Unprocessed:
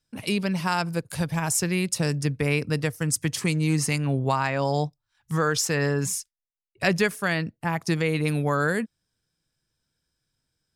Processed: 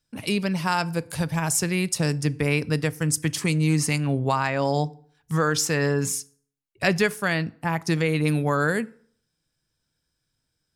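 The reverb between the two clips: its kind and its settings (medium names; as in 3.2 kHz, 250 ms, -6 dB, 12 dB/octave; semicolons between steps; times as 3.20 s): FDN reverb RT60 0.57 s, low-frequency decay 1×, high-frequency decay 0.7×, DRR 17.5 dB; trim +1 dB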